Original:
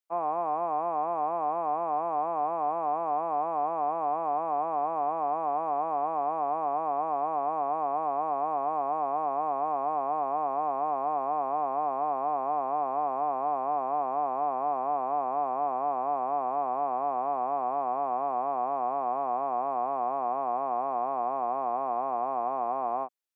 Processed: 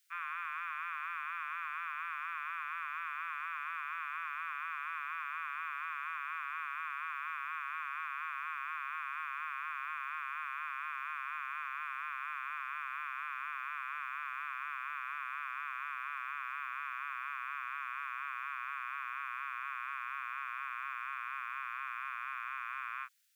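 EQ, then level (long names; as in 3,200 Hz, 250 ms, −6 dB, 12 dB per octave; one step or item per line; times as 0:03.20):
Butterworth high-pass 1,400 Hz 72 dB per octave
+17.0 dB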